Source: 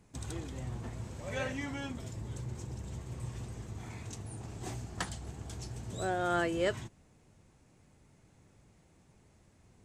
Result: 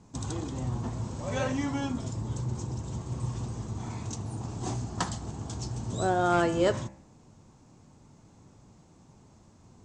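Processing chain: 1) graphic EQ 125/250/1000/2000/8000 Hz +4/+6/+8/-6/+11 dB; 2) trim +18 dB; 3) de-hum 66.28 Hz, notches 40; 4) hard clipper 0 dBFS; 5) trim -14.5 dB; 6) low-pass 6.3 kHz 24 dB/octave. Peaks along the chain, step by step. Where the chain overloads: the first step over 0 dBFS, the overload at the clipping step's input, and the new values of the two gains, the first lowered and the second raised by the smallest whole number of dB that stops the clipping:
-14.0 dBFS, +4.0 dBFS, +4.0 dBFS, 0.0 dBFS, -14.5 dBFS, -14.0 dBFS; step 2, 4.0 dB; step 2 +14 dB, step 5 -10.5 dB

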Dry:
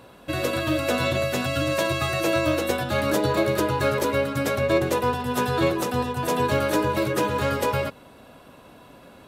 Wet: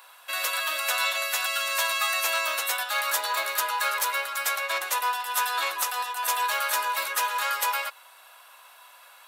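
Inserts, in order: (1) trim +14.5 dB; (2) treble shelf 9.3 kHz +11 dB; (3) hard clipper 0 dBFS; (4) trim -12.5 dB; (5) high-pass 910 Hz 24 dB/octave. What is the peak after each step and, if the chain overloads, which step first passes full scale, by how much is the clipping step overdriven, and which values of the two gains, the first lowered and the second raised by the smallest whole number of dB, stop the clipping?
+5.5 dBFS, +6.0 dBFS, 0.0 dBFS, -12.5 dBFS, -10.0 dBFS; step 1, 6.0 dB; step 1 +8.5 dB, step 4 -6.5 dB

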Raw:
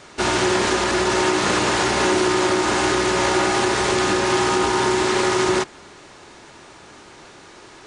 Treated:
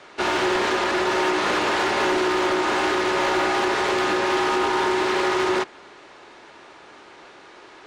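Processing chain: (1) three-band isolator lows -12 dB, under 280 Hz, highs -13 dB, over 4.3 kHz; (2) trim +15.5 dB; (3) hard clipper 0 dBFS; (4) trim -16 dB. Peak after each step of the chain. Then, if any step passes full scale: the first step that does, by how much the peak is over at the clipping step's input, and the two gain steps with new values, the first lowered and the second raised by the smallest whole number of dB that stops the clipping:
-7.5 dBFS, +8.0 dBFS, 0.0 dBFS, -16.0 dBFS; step 2, 8.0 dB; step 2 +7.5 dB, step 4 -8 dB

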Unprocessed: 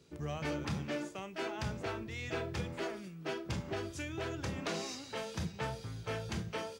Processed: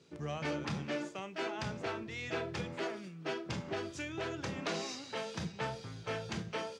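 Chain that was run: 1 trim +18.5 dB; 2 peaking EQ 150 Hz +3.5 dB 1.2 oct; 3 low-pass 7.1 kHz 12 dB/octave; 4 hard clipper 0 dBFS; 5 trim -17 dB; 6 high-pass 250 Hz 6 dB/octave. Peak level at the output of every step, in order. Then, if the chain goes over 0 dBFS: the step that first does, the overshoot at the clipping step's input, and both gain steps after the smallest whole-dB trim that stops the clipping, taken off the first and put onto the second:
-6.5 dBFS, -5.5 dBFS, -5.5 dBFS, -5.5 dBFS, -22.5 dBFS, -24.0 dBFS; nothing clips

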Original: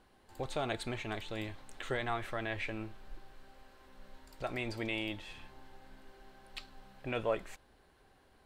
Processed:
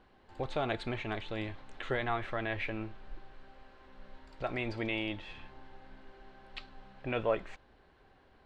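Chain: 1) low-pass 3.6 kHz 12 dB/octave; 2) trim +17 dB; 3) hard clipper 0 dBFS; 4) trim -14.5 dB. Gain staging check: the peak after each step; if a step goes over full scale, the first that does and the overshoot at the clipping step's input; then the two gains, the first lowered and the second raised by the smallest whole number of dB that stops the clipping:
-19.5 dBFS, -2.5 dBFS, -2.5 dBFS, -17.0 dBFS; nothing clips

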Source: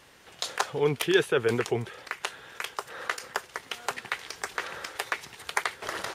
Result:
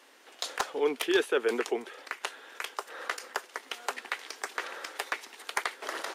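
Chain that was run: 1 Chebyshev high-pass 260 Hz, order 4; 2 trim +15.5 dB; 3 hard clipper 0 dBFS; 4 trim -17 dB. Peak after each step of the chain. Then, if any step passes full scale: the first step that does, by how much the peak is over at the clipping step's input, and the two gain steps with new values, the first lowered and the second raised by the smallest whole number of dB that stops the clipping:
-8.5 dBFS, +7.0 dBFS, 0.0 dBFS, -17.0 dBFS; step 2, 7.0 dB; step 2 +8.5 dB, step 4 -10 dB

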